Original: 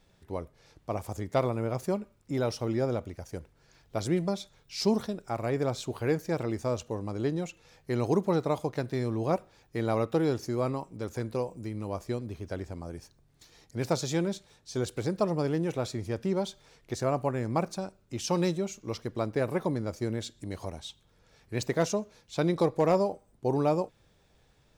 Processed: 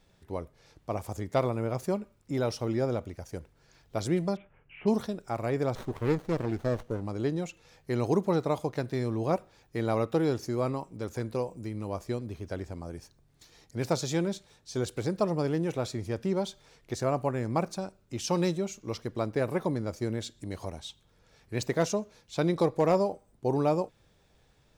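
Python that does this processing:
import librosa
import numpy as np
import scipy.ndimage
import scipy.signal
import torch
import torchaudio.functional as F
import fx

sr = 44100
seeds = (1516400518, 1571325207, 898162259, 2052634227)

y = fx.steep_lowpass(x, sr, hz=2900.0, slope=96, at=(4.35, 4.86), fade=0.02)
y = fx.running_max(y, sr, window=17, at=(5.75, 7.07))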